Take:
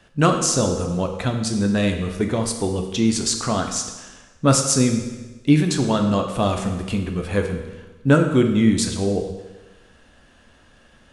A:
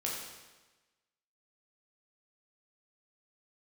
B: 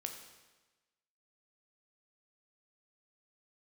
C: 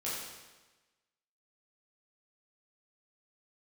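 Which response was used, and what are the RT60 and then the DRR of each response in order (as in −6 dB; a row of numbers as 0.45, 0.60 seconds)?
B; 1.2, 1.2, 1.2 seconds; −4.0, 3.5, −9.0 decibels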